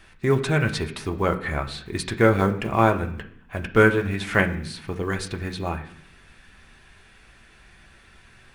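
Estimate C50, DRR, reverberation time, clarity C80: 12.5 dB, 3.0 dB, 0.65 s, 15.5 dB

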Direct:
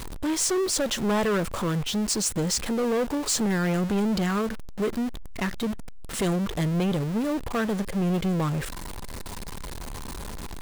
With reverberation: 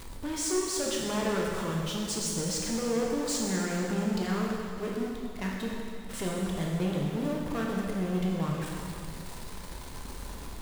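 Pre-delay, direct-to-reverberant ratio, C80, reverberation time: 7 ms, -2.5 dB, 1.5 dB, 2.4 s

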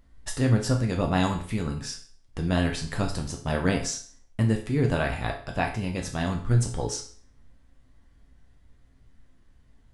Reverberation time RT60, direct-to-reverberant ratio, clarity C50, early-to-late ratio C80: 0.45 s, 1.5 dB, 9.0 dB, 13.0 dB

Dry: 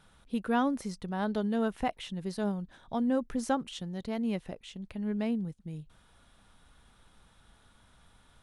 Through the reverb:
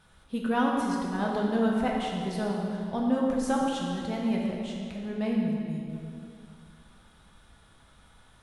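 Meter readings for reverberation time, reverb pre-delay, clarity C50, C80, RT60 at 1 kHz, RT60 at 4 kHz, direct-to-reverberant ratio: 2.6 s, 3 ms, 0.0 dB, 1.5 dB, 2.5 s, 2.0 s, -2.5 dB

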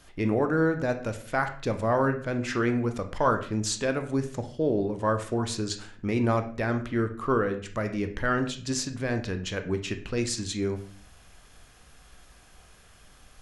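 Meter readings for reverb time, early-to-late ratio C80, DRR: 0.45 s, 15.0 dB, 6.5 dB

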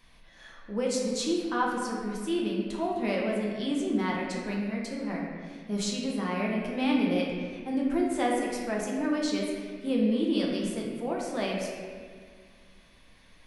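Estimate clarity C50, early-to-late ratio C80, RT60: 0.5 dB, 2.5 dB, 1.8 s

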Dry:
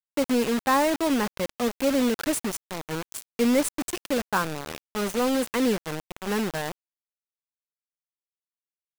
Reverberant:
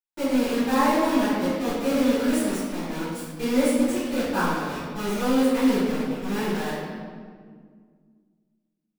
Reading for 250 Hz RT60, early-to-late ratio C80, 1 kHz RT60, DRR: 2.7 s, 0.0 dB, 1.7 s, -17.0 dB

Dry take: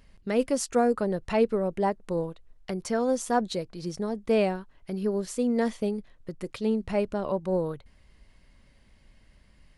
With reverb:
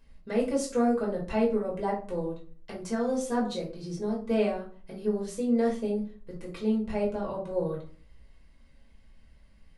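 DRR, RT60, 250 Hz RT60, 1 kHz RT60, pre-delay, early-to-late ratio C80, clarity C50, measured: -4.0 dB, 0.40 s, 0.55 s, 0.40 s, 4 ms, 13.0 dB, 7.5 dB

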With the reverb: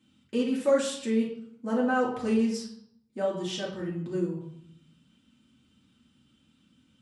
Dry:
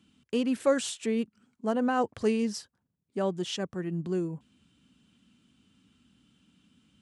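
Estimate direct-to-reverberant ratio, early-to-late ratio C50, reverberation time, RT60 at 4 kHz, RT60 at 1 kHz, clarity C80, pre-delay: -5.5 dB, 5.0 dB, 0.70 s, 0.50 s, 0.65 s, 9.0 dB, 3 ms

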